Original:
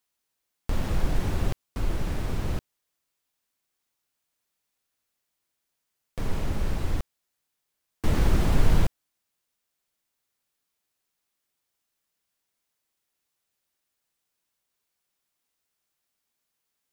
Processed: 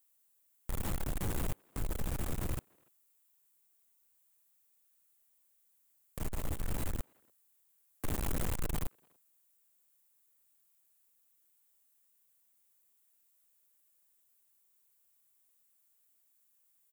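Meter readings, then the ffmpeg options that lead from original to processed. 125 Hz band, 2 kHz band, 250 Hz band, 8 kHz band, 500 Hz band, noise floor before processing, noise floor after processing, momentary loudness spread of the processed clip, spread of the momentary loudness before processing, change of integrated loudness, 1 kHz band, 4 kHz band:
-11.0 dB, -9.0 dB, -10.0 dB, -0.5 dB, -9.5 dB, -81 dBFS, -72 dBFS, 8 LU, 12 LU, -9.5 dB, -9.0 dB, -9.0 dB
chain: -filter_complex "[0:a]aeval=exprs='(tanh(35.5*val(0)+0.55)-tanh(0.55))/35.5':c=same,asplit=2[a][b];[b]adelay=290,highpass=300,lowpass=3.4k,asoftclip=type=hard:threshold=-37dB,volume=-26dB[c];[a][c]amix=inputs=2:normalize=0,aexciter=amount=3.7:drive=5.7:freq=7.2k,volume=-1dB"

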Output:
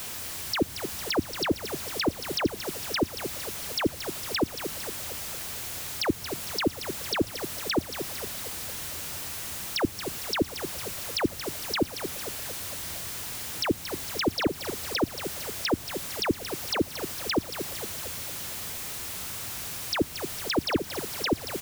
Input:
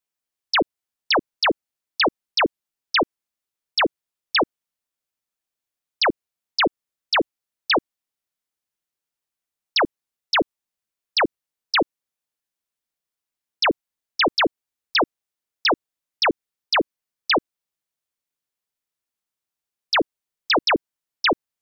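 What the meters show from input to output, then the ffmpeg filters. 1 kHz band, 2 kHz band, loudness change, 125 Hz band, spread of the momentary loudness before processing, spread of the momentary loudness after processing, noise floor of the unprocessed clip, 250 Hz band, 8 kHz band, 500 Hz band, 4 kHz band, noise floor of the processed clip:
-10.5 dB, -10.5 dB, -8.0 dB, +8.5 dB, 9 LU, 4 LU, under -85 dBFS, -0.5 dB, n/a, -5.5 dB, -8.0 dB, -41 dBFS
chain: -filter_complex "[0:a]aeval=exprs='val(0)+0.5*0.0335*sgn(val(0))':c=same,equalizer=f=88:t=o:w=1.3:g=12.5,acrossover=split=340[a][b];[b]acompressor=threshold=-30dB:ratio=6[c];[a][c]amix=inputs=2:normalize=0,asplit=2[d][e];[e]asplit=7[f][g][h][i][j][k][l];[f]adelay=228,afreqshift=57,volume=-9.5dB[m];[g]adelay=456,afreqshift=114,volume=-14.2dB[n];[h]adelay=684,afreqshift=171,volume=-19dB[o];[i]adelay=912,afreqshift=228,volume=-23.7dB[p];[j]adelay=1140,afreqshift=285,volume=-28.4dB[q];[k]adelay=1368,afreqshift=342,volume=-33.2dB[r];[l]adelay=1596,afreqshift=399,volume=-37.9dB[s];[m][n][o][p][q][r][s]amix=inputs=7:normalize=0[t];[d][t]amix=inputs=2:normalize=0"

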